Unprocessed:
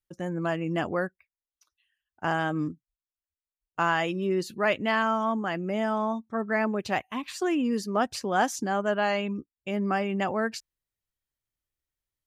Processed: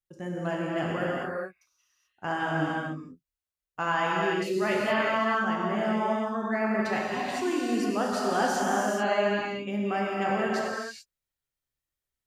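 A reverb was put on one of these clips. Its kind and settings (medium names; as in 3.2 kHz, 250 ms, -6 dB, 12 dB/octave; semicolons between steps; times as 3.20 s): gated-style reverb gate 460 ms flat, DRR -5 dB; trim -5.5 dB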